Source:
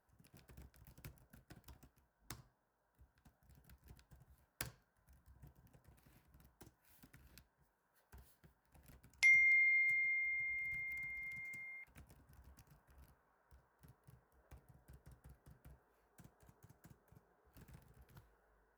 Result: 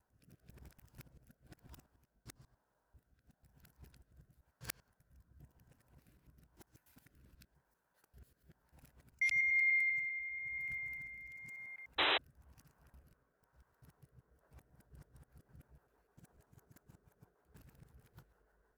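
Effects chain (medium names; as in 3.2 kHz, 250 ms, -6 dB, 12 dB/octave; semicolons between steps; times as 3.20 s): time reversed locally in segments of 98 ms; rotary cabinet horn 1 Hz, later 6.3 Hz, at 14.20 s; painted sound noise, 11.98–12.18 s, 290–4000 Hz -34 dBFS; trim +2.5 dB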